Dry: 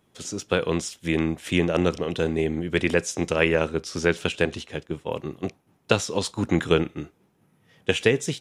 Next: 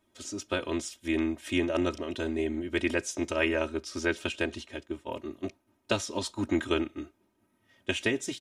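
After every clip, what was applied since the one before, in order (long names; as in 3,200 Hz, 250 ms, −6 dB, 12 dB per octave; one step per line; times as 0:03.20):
comb filter 3.2 ms, depth 99%
level −8.5 dB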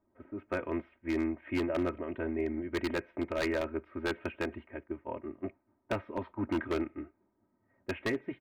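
elliptic low-pass filter 2,200 Hz, stop band 70 dB
low-pass that shuts in the quiet parts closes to 1,100 Hz, open at −27.5 dBFS
wave folding −21.5 dBFS
level −2 dB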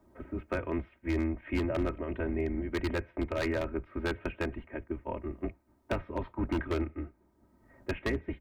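sub-octave generator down 2 octaves, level 0 dB
multiband upward and downward compressor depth 40%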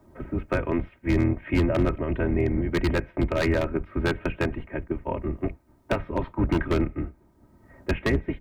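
sub-octave generator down 1 octave, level −2 dB
level +7 dB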